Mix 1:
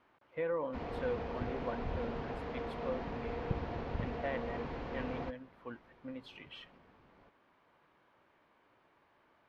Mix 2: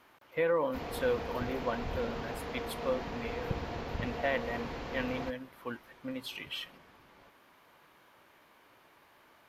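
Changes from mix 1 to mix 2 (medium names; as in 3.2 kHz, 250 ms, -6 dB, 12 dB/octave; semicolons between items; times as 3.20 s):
speech +5.0 dB; master: remove tape spacing loss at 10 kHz 22 dB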